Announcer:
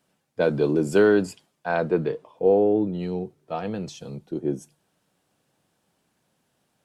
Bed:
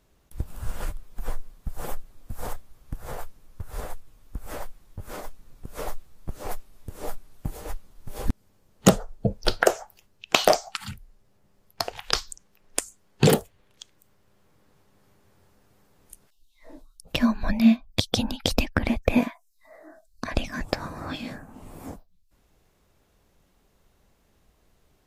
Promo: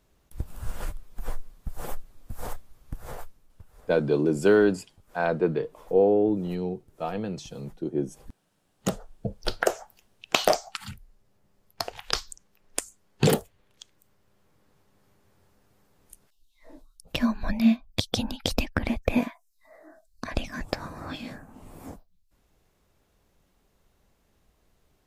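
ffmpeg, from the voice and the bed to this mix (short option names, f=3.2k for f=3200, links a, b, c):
-filter_complex "[0:a]adelay=3500,volume=-1.5dB[a];[1:a]volume=15.5dB,afade=t=out:st=3.01:d=0.73:silence=0.11885,afade=t=in:st=8.46:d=1.46:silence=0.133352[b];[a][b]amix=inputs=2:normalize=0"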